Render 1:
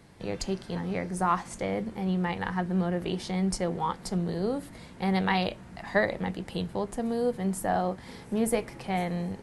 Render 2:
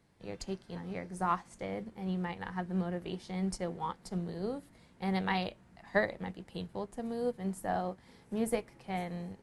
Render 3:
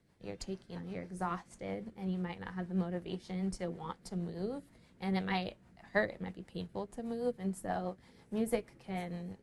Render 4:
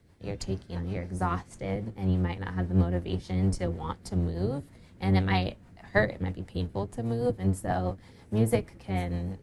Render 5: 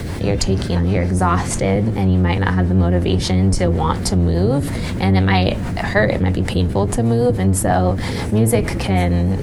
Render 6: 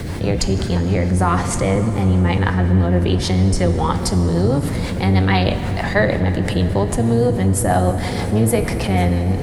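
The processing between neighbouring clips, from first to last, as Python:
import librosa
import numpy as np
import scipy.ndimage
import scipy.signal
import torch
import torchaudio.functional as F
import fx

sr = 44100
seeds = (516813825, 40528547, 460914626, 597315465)

y1 = fx.upward_expand(x, sr, threshold_db=-41.0, expansion=1.5)
y1 = y1 * librosa.db_to_amplitude(-3.5)
y2 = fx.rotary(y1, sr, hz=6.3)
y3 = fx.octave_divider(y2, sr, octaves=1, level_db=2.0)
y3 = y3 * librosa.db_to_amplitude(6.5)
y4 = fx.env_flatten(y3, sr, amount_pct=70)
y4 = y4 * librosa.db_to_amplitude(7.0)
y5 = fx.rev_plate(y4, sr, seeds[0], rt60_s=4.2, hf_ratio=0.65, predelay_ms=0, drr_db=8.5)
y5 = y5 * librosa.db_to_amplitude(-1.0)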